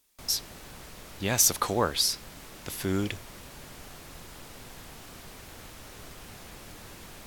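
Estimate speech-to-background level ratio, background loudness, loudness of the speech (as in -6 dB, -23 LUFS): 18.5 dB, -45.5 LUFS, -27.0 LUFS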